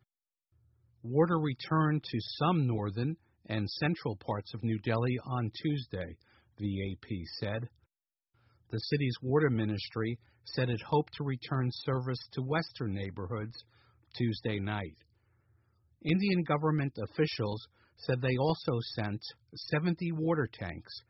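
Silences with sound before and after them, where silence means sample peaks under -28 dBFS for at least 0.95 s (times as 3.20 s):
7.58–8.74 s
14.84–16.06 s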